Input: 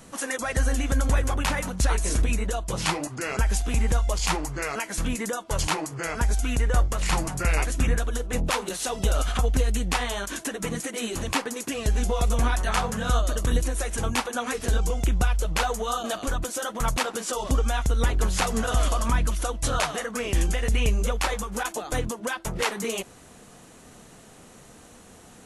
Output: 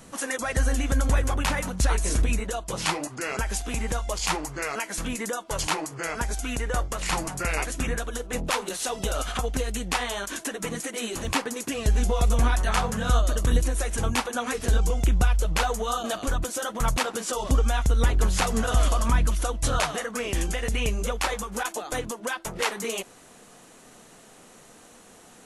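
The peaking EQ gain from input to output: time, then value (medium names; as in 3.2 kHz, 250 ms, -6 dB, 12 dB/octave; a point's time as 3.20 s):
peaking EQ 63 Hz 2.7 oct
0 dB
from 2.40 s -8 dB
from 11.25 s +2 dB
from 19.98 s -5 dB
from 21.63 s -11.5 dB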